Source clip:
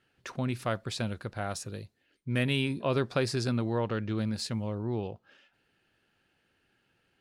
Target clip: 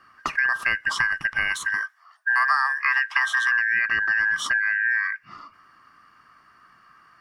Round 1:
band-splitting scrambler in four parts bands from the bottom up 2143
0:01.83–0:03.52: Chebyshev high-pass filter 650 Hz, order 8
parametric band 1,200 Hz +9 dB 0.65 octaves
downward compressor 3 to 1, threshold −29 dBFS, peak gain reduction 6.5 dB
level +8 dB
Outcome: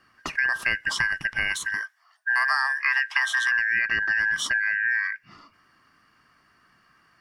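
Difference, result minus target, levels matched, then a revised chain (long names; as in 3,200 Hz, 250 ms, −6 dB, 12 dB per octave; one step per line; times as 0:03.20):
1,000 Hz band −3.5 dB
band-splitting scrambler in four parts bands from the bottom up 2143
0:01.83–0:03.52: Chebyshev high-pass filter 650 Hz, order 8
parametric band 1,200 Hz +20.5 dB 0.65 octaves
downward compressor 3 to 1, threshold −29 dBFS, peak gain reduction 11.5 dB
level +8 dB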